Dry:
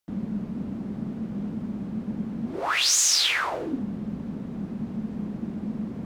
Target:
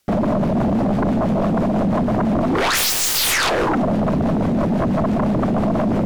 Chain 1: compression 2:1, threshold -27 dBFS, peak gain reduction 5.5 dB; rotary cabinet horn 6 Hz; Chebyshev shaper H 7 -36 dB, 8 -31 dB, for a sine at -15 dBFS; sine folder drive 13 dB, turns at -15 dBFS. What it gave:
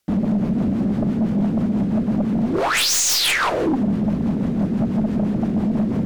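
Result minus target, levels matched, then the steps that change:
sine folder: distortion -12 dB
change: sine folder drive 20 dB, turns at -15 dBFS

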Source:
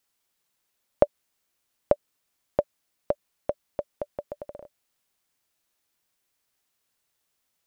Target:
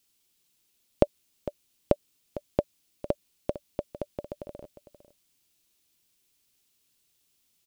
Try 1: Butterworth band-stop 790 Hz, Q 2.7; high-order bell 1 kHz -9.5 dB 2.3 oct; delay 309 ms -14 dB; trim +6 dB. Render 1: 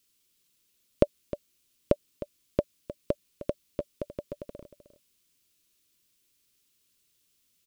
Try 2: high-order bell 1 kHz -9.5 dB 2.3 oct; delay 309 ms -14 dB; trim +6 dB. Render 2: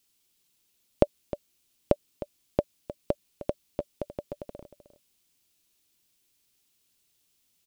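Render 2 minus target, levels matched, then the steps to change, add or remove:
echo 145 ms early
change: delay 454 ms -14 dB

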